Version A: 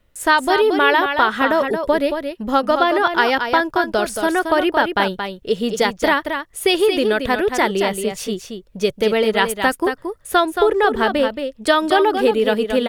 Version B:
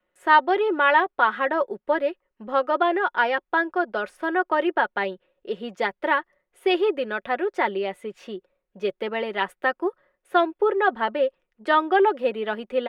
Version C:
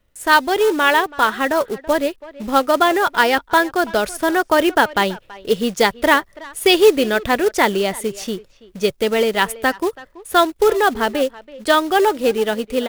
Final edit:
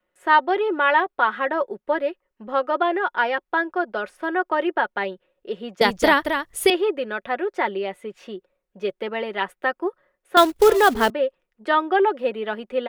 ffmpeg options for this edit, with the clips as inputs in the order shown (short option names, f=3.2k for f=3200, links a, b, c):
-filter_complex "[1:a]asplit=3[a][b][c];[a]atrim=end=5.812[d];[0:a]atrim=start=5.808:end=6.702[e];[b]atrim=start=6.698:end=10.372[f];[2:a]atrim=start=10.368:end=11.102[g];[c]atrim=start=11.098[h];[d][e]acrossfade=d=0.004:c1=hsin:c2=hsin[i];[i][f]acrossfade=d=0.004:c1=hsin:c2=hsin[j];[j][g]acrossfade=d=0.004:c1=hsin:c2=hsin[k];[k][h]acrossfade=d=0.004:c1=hsin:c2=hsin"